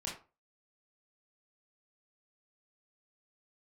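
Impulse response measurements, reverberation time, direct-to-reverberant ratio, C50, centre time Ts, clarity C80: 0.35 s, -5.0 dB, 6.5 dB, 34 ms, 12.5 dB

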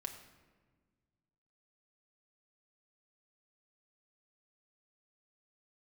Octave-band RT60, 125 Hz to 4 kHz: 2.4, 2.1, 1.6, 1.3, 1.2, 0.85 s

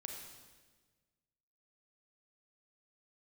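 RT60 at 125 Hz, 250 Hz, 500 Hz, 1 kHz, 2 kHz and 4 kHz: 1.8, 1.6, 1.5, 1.3, 1.3, 1.3 s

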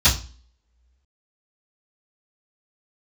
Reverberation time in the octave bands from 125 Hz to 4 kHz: 0.40, 0.50, 0.35, 0.35, 0.35, 0.40 s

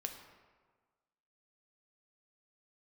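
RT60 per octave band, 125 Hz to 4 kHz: 1.5, 1.5, 1.5, 1.5, 1.2, 0.85 s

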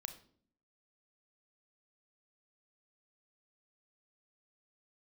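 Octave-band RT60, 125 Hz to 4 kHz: 0.75, 0.80, 0.65, 0.45, 0.40, 0.40 s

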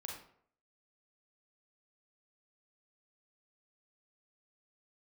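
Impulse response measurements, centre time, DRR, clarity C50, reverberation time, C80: 40 ms, -1.0 dB, 3.0 dB, 0.65 s, 7.5 dB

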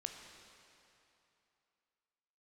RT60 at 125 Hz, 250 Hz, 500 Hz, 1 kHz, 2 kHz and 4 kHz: 2.7, 2.8, 2.8, 3.0, 2.8, 2.5 s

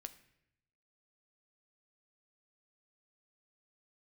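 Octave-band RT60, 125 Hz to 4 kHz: 1.1, 0.95, 0.85, 0.70, 0.85, 0.65 s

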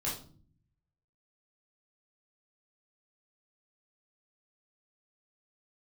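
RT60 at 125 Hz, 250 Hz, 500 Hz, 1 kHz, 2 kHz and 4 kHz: 1.2, 0.90, 0.55, 0.40, 0.30, 0.35 s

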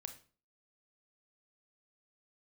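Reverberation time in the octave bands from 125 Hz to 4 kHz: 0.45, 0.45, 0.40, 0.40, 0.35, 0.35 s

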